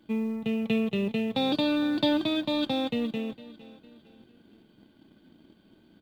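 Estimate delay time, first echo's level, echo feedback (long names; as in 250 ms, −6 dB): 456 ms, −18.0 dB, 39%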